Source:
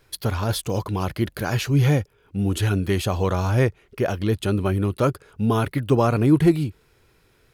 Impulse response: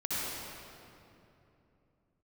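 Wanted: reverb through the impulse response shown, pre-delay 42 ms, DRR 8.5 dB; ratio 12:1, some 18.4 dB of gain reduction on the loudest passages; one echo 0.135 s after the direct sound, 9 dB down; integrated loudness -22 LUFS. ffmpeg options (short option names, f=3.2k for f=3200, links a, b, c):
-filter_complex "[0:a]acompressor=threshold=-30dB:ratio=12,aecho=1:1:135:0.355,asplit=2[a][b];[1:a]atrim=start_sample=2205,adelay=42[c];[b][c]afir=irnorm=-1:irlink=0,volume=-15.5dB[d];[a][d]amix=inputs=2:normalize=0,volume=11.5dB"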